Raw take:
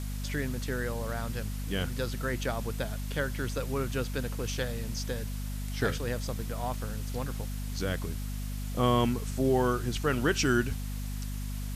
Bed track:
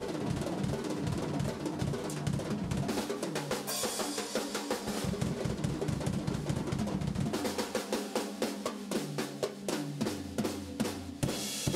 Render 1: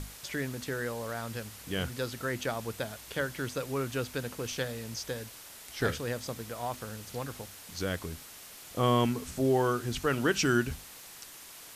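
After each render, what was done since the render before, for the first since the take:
mains-hum notches 50/100/150/200/250 Hz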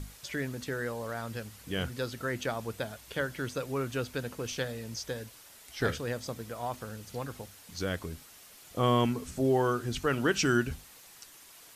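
broadband denoise 6 dB, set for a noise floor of −49 dBFS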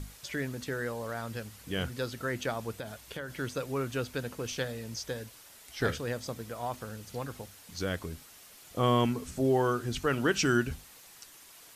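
0:02.75–0:03.37: downward compressor, threshold −34 dBFS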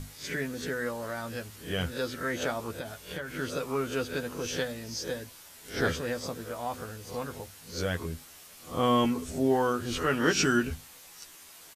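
peak hold with a rise ahead of every peak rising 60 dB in 0.34 s
double-tracking delay 12 ms −5.5 dB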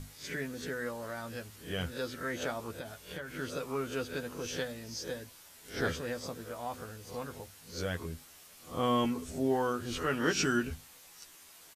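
level −4.5 dB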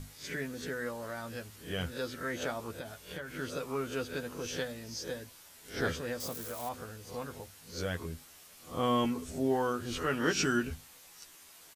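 0:06.20–0:06.69: spike at every zero crossing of −35 dBFS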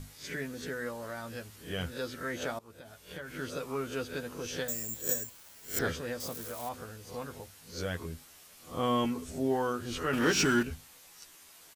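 0:02.59–0:03.28: fade in linear, from −19 dB
0:04.68–0:05.79: bad sample-rate conversion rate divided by 6×, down filtered, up zero stuff
0:10.13–0:10.63: power curve on the samples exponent 0.7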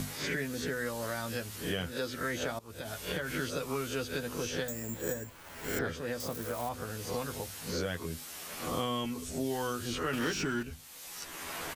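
multiband upward and downward compressor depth 100%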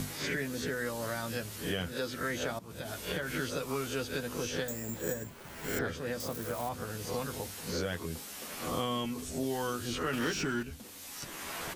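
mix in bed track −19 dB

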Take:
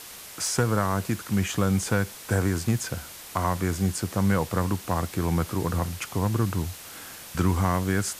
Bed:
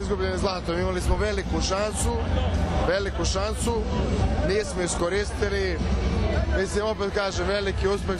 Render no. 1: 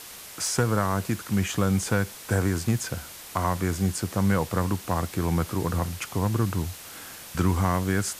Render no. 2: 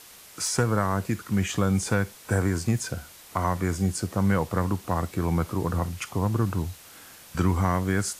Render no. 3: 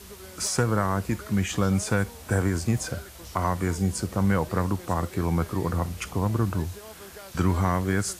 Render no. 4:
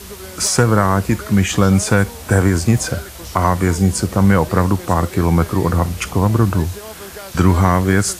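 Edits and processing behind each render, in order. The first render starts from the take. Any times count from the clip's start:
no processing that can be heard
noise reduction from a noise print 6 dB
mix in bed −19.5 dB
level +10.5 dB; brickwall limiter −2 dBFS, peak gain reduction 0.5 dB

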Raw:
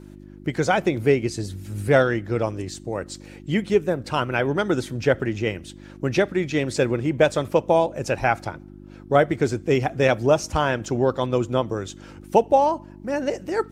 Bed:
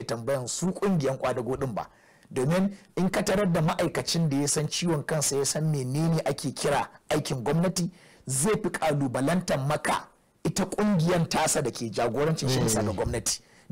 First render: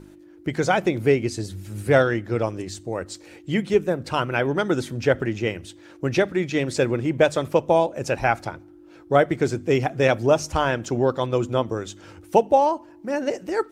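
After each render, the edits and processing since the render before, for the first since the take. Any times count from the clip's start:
hum removal 50 Hz, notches 5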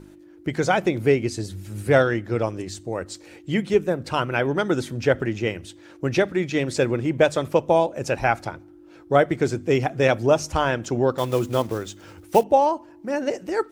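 0:11.18–0:12.44: one scale factor per block 5 bits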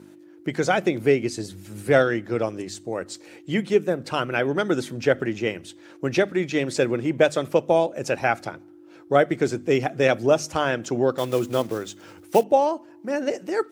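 high-pass filter 150 Hz 12 dB per octave
dynamic equaliser 950 Hz, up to −6 dB, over −38 dBFS, Q 4.1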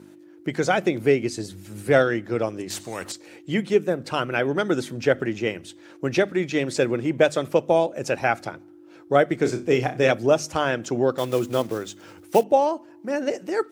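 0:02.70–0:03.12: every bin compressed towards the loudest bin 2 to 1
0:09.36–0:10.12: flutter between parallel walls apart 5.4 metres, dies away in 0.24 s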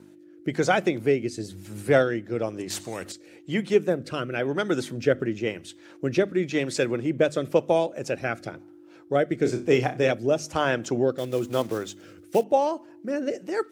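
rotating-speaker cabinet horn 1 Hz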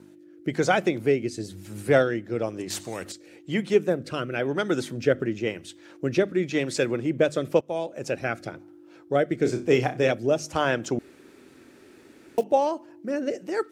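0:07.61–0:08.09: fade in, from −16 dB
0:10.99–0:12.38: fill with room tone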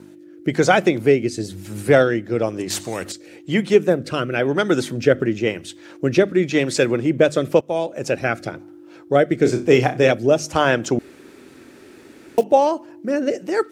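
level +7 dB
brickwall limiter −3 dBFS, peak gain reduction 3 dB

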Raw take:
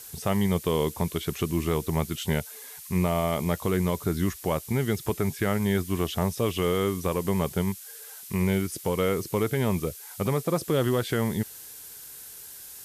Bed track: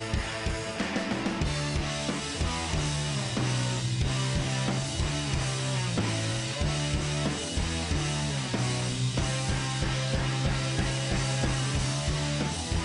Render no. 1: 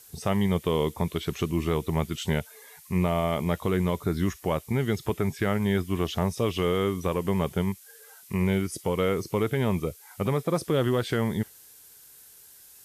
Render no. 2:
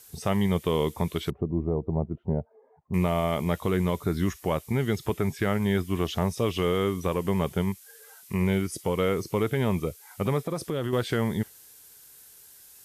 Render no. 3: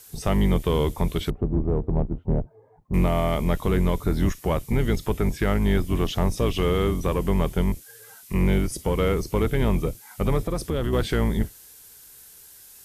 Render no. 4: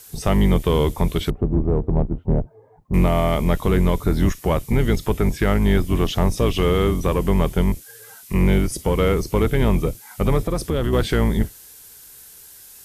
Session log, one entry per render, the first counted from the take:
noise reduction from a noise print 8 dB
0:01.30–0:02.94: Chebyshev low-pass filter 730 Hz, order 3; 0:10.47–0:10.93: downward compressor, threshold −25 dBFS
sub-octave generator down 2 octaves, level +1 dB; in parallel at −6 dB: soft clipping −26.5 dBFS, distortion −8 dB
level +4 dB

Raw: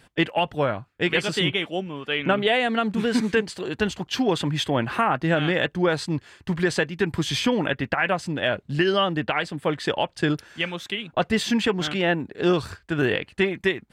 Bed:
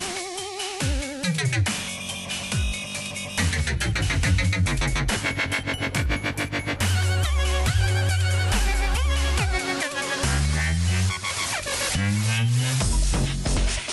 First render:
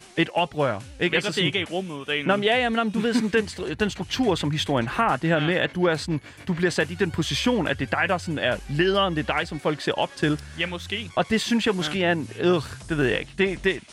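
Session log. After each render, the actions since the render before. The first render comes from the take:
mix in bed −19 dB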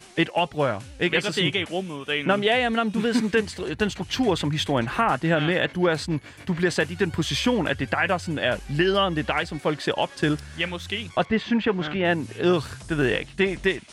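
0:11.25–0:12.05: low-pass filter 2,500 Hz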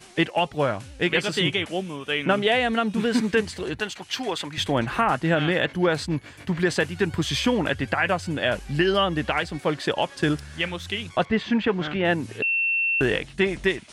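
0:03.80–0:04.58: high-pass filter 780 Hz 6 dB per octave
0:12.42–0:13.01: beep over 2,700 Hz −20 dBFS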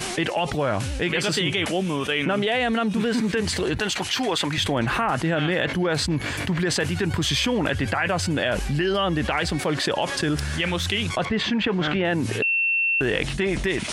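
brickwall limiter −16 dBFS, peak gain reduction 5.5 dB
envelope flattener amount 70%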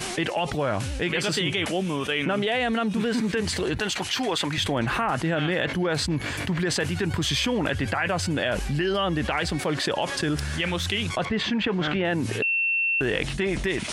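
level −2 dB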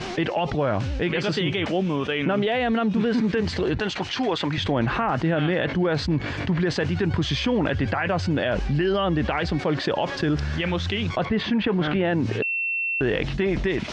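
low-pass filter 5,600 Hz 24 dB per octave
tilt shelving filter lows +3.5 dB, about 1,400 Hz

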